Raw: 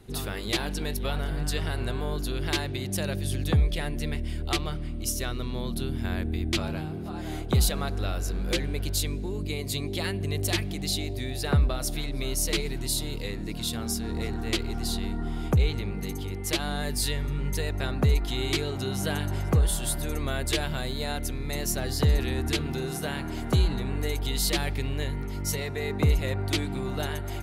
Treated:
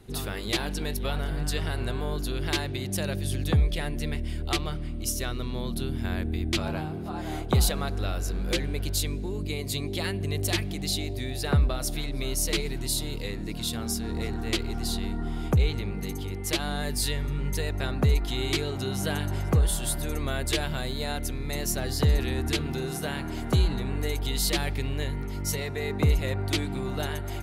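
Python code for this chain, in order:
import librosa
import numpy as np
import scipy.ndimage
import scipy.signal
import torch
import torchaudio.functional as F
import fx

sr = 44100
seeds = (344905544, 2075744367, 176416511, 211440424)

y = fx.dynamic_eq(x, sr, hz=900.0, q=0.92, threshold_db=-44.0, ratio=4.0, max_db=6, at=(6.65, 7.72))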